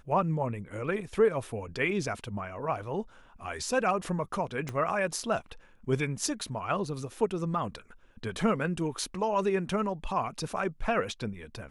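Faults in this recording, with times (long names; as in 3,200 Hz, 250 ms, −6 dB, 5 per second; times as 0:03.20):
0:04.69: click −21 dBFS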